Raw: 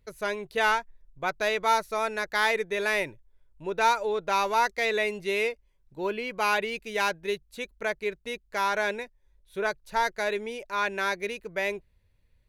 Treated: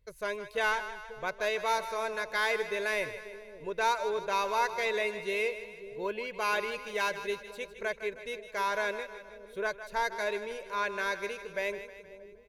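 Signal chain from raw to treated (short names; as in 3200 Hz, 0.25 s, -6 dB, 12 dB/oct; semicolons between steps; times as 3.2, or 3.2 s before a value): comb 1.9 ms, depth 41%; on a send: split-band echo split 520 Hz, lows 0.541 s, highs 0.157 s, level -11.5 dB; on the sum: gain -5.5 dB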